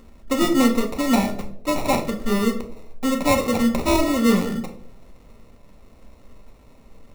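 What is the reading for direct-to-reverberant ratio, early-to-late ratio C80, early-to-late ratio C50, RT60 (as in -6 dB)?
4.0 dB, 14.5 dB, 10.5 dB, 0.70 s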